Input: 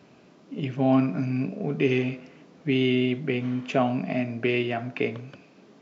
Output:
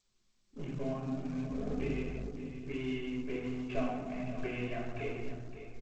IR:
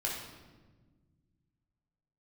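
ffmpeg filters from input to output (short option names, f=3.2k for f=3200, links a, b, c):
-filter_complex "[0:a]aeval=exprs='val(0)+0.5*0.0237*sgn(val(0))':c=same,asettb=1/sr,asplit=3[a][b][c];[a]atrim=end=1.504[d];[b]atrim=start=1.5:end=2.11,asetpts=PTS-STARTPTS,afade=t=in:d=0.004:c=qsin,afade=t=out:st=0.606:d=0.004:c=qsin,aeval=exprs='val(0)+0.0126*(sin(2*PI*50*n/s)+sin(2*PI*2*50*n/s)/2+sin(2*PI*3*50*n/s)/3+sin(2*PI*4*50*n/s)/4+sin(2*PI*5*50*n/s)/5)':c=same[e];[c]atrim=start=2.106[f];[d][e]acrossfade=d=0.004:c1=hsin:c2=qsin[g];[g][f]acrossfade=d=0.004:c1=qsin:c2=hsin,acompressor=threshold=-27dB:ratio=5,asubboost=boost=8:cutoff=54,agate=range=-33dB:threshold=-26dB:ratio=3:detection=peak,bass=f=250:g=2,treble=f=4k:g=-10[h];[1:a]atrim=start_sample=2205,asetrate=31752,aresample=44100[i];[h][i]afir=irnorm=-1:irlink=0,anlmdn=3.98,aecho=1:1:562:0.266,acrusher=bits=6:mode=log:mix=0:aa=0.000001,flanger=delay=1.1:depth=3.1:regen=70:speed=1.4:shape=triangular,volume=-5dB" -ar 16000 -c:a g722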